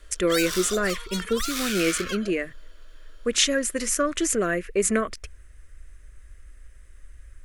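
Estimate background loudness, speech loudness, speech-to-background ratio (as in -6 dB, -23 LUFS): -30.5 LUFS, -25.0 LUFS, 5.5 dB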